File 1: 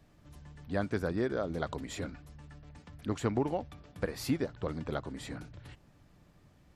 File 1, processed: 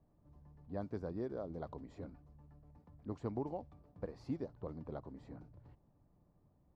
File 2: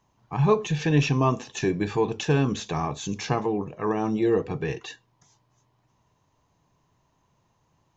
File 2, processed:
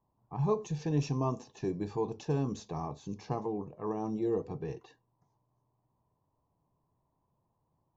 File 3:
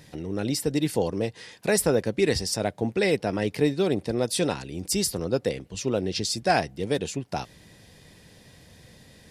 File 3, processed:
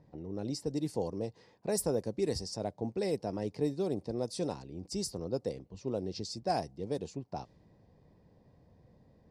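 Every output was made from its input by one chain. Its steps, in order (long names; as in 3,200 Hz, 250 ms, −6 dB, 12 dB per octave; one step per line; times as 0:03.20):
low-pass that shuts in the quiet parts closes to 1,700 Hz, open at −18 dBFS
flat-topped bell 2,200 Hz −11.5 dB
level −9 dB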